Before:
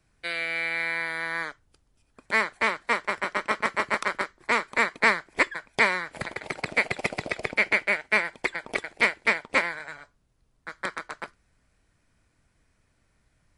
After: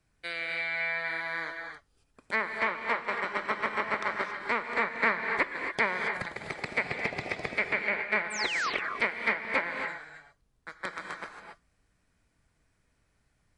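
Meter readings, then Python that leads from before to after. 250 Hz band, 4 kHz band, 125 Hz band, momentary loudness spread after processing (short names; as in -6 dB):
-4.0 dB, -4.5 dB, -3.0 dB, 12 LU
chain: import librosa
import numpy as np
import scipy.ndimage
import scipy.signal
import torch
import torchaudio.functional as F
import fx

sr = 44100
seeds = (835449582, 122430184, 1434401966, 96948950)

y = fx.spec_paint(x, sr, seeds[0], shape='fall', start_s=8.3, length_s=0.4, low_hz=980.0, high_hz=9100.0, level_db=-25.0)
y = fx.env_lowpass_down(y, sr, base_hz=2400.0, full_db=-20.0)
y = fx.rev_gated(y, sr, seeds[1], gate_ms=300, shape='rising', drr_db=3.5)
y = y * 10.0 ** (-5.0 / 20.0)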